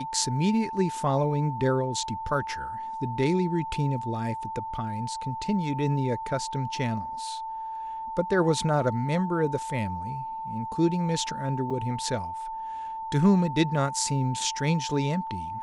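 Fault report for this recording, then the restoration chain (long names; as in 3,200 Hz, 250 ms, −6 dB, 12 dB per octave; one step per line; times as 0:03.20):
whistle 890 Hz −32 dBFS
0:11.70–0:11.71: drop-out 5.5 ms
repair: notch filter 890 Hz, Q 30
repair the gap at 0:11.70, 5.5 ms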